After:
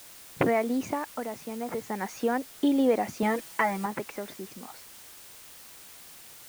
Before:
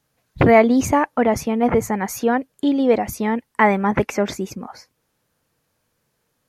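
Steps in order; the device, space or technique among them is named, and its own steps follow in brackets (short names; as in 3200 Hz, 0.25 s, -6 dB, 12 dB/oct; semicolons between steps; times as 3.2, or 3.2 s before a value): medium wave at night (BPF 200–4400 Hz; compressor, threshold -18 dBFS, peak gain reduction 10 dB; tremolo 0.35 Hz, depth 74%; whine 9000 Hz -58 dBFS; white noise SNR 18 dB); 3.22–3.86 comb 6.1 ms, depth 87%; gain -1.5 dB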